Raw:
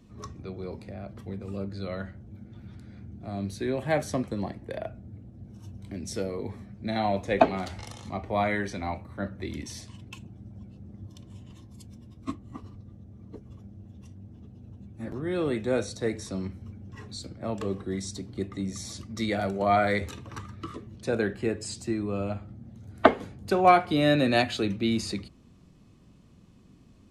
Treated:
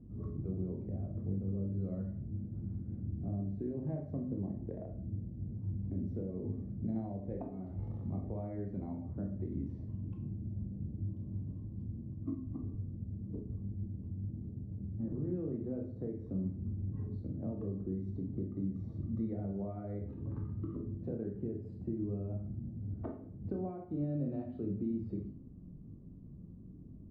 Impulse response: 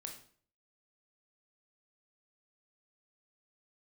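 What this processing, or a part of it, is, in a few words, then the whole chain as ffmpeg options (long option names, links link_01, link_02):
television next door: -filter_complex "[0:a]acompressor=threshold=-37dB:ratio=5,lowpass=320[link_01];[1:a]atrim=start_sample=2205[link_02];[link_01][link_02]afir=irnorm=-1:irlink=0,volume=8.5dB"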